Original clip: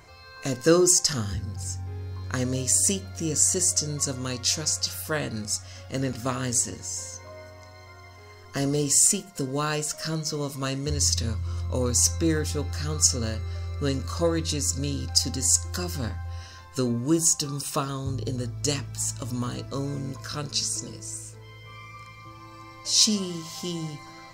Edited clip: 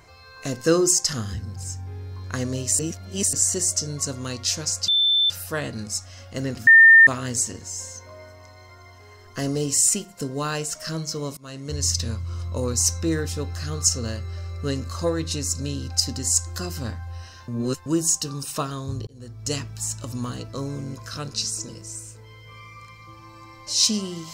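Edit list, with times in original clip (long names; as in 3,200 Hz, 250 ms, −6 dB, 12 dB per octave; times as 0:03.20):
0:02.79–0:03.33: reverse
0:04.88: insert tone 3,540 Hz −16 dBFS 0.42 s
0:06.25: insert tone 1,810 Hz −7 dBFS 0.40 s
0:10.55–0:11.00: fade in, from −23 dB
0:16.66–0:17.04: reverse
0:18.25–0:18.75: fade in linear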